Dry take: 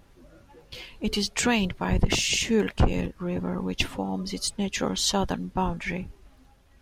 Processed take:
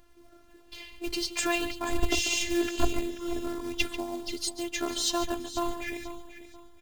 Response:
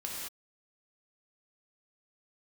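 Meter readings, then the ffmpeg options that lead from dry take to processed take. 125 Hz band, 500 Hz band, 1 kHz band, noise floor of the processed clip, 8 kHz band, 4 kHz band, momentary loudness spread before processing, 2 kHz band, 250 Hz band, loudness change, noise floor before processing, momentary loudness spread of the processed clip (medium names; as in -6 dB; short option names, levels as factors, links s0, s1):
-15.0 dB, -3.5 dB, -4.0 dB, -56 dBFS, -3.0 dB, -3.5 dB, 10 LU, -2.5 dB, -5.0 dB, -4.0 dB, -57 dBFS, 16 LU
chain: -filter_complex "[0:a]asplit=2[s0][s1];[s1]adelay=139.9,volume=0.282,highshelf=f=4000:g=-3.15[s2];[s0][s2]amix=inputs=2:normalize=0,acrusher=bits=4:mode=log:mix=0:aa=0.000001,afftfilt=real='hypot(re,im)*cos(PI*b)':imag='0':win_size=512:overlap=0.75,asplit=2[s3][s4];[s4]aecho=0:1:485|970|1455:0.211|0.0634|0.019[s5];[s3][s5]amix=inputs=2:normalize=0"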